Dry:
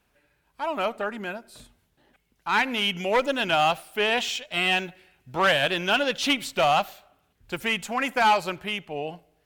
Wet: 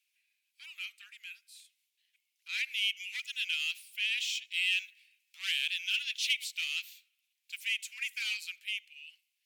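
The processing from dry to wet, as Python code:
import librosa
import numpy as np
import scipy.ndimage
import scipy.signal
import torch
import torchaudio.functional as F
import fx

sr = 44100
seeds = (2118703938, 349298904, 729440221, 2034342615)

y = scipy.signal.sosfilt(scipy.signal.ellip(4, 1.0, 80, 2300.0, 'highpass', fs=sr, output='sos'), x)
y = F.gain(torch.from_numpy(y), -4.0).numpy()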